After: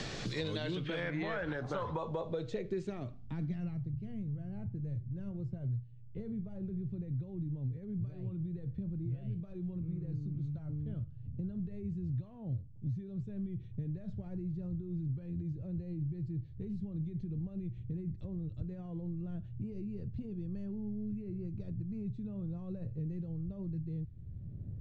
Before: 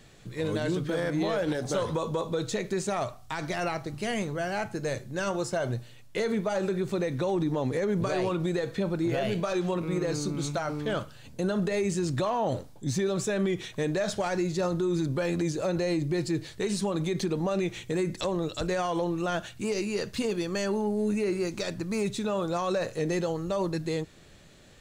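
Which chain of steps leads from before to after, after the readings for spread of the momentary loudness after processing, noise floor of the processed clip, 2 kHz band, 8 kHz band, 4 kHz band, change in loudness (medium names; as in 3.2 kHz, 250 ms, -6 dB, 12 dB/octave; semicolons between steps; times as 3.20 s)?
4 LU, -48 dBFS, under -10 dB, under -20 dB, under -10 dB, -10.0 dB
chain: low-pass sweep 5.3 kHz -> 100 Hz, 0.26–4.08 s; three bands compressed up and down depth 100%; trim -1.5 dB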